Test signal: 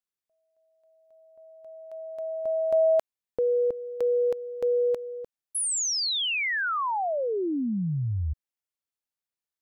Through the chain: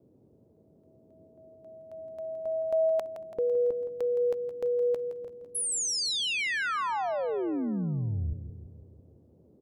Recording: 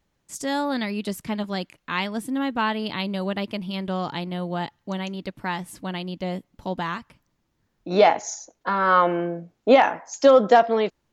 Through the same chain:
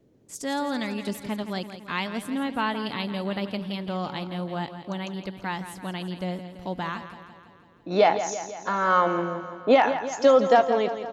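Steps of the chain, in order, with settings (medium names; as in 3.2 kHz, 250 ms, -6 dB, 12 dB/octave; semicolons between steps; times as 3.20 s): band noise 75–470 Hz -58 dBFS; feedback delay 167 ms, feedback 59%, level -11 dB; trim -3 dB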